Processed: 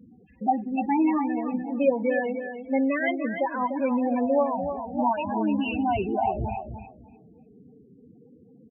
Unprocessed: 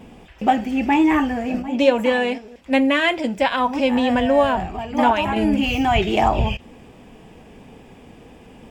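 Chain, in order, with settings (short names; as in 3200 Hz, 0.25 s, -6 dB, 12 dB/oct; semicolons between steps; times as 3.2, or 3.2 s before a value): HPF 78 Hz 12 dB/oct; loudest bins only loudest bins 8; on a send: feedback echo 0.297 s, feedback 19%, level -8.5 dB; on the sum: gain -6 dB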